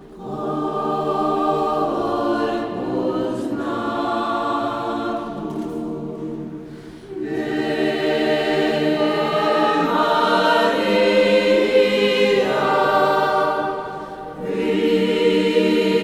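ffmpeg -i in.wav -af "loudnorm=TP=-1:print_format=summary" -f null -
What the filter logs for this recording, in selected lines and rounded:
Input Integrated:    -19.3 LUFS
Input True Peak:      -4.2 dBTP
Input LRA:             6.9 LU
Input Threshold:     -29.7 LUFS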